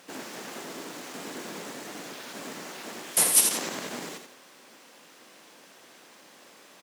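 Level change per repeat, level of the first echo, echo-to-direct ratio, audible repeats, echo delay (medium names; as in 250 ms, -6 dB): -10.0 dB, -7.5 dB, -7.0 dB, 2, 82 ms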